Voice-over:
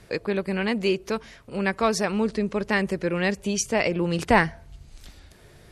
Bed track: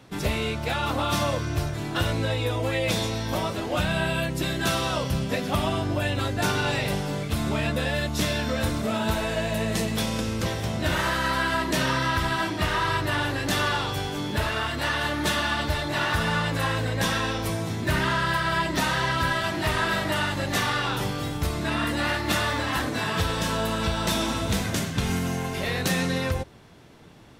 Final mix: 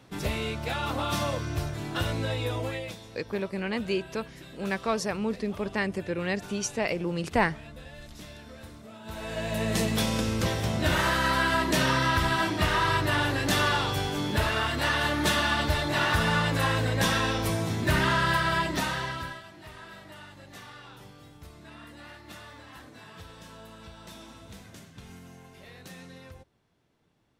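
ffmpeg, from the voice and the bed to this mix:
ffmpeg -i stem1.wav -i stem2.wav -filter_complex "[0:a]adelay=3050,volume=-5.5dB[link_01];[1:a]volume=16dB,afade=type=out:start_time=2.58:duration=0.39:silence=0.158489,afade=type=in:start_time=9.03:duration=0.79:silence=0.1,afade=type=out:start_time=18.36:duration=1.08:silence=0.0891251[link_02];[link_01][link_02]amix=inputs=2:normalize=0" out.wav

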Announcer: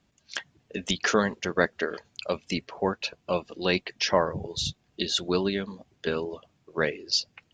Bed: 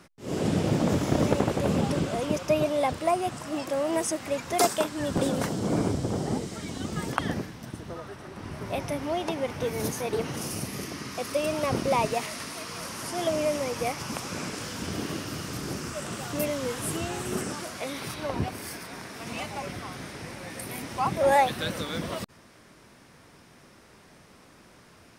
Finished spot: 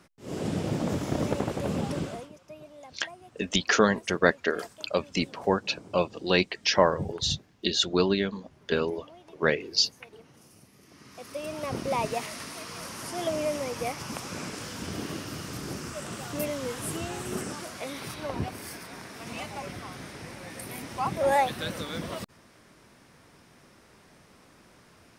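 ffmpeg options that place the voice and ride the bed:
ffmpeg -i stem1.wav -i stem2.wav -filter_complex "[0:a]adelay=2650,volume=2dB[link_01];[1:a]volume=15.5dB,afade=type=out:start_time=2.05:duration=0.25:silence=0.125893,afade=type=in:start_time=10.81:duration=1.35:silence=0.1[link_02];[link_01][link_02]amix=inputs=2:normalize=0" out.wav

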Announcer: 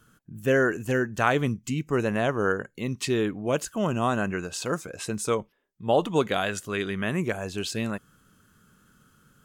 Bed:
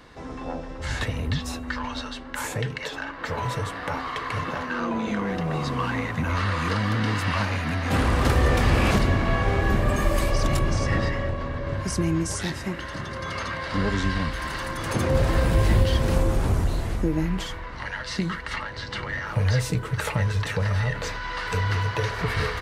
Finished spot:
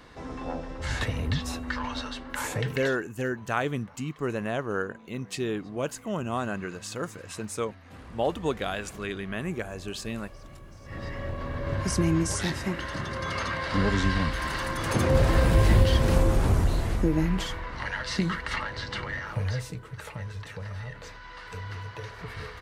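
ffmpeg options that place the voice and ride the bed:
ffmpeg -i stem1.wav -i stem2.wav -filter_complex "[0:a]adelay=2300,volume=-5dB[link_01];[1:a]volume=23dB,afade=type=out:start_time=2.8:duration=0.22:silence=0.0707946,afade=type=in:start_time=10.83:duration=1.01:silence=0.0595662,afade=type=out:start_time=18.7:duration=1.07:silence=0.223872[link_02];[link_01][link_02]amix=inputs=2:normalize=0" out.wav

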